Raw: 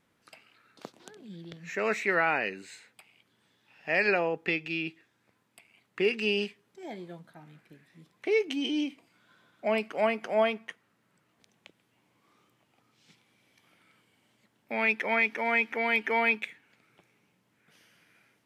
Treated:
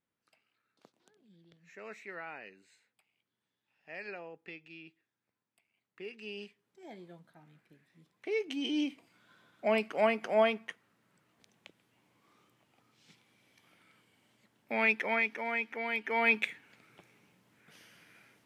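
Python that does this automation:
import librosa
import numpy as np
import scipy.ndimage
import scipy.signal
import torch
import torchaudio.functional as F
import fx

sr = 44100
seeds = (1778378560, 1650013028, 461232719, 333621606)

y = fx.gain(x, sr, db=fx.line((6.12, -18.0), (6.9, -8.0), (8.3, -8.0), (8.87, -1.0), (14.85, -1.0), (15.53, -7.5), (16.04, -7.5), (16.44, 3.5)))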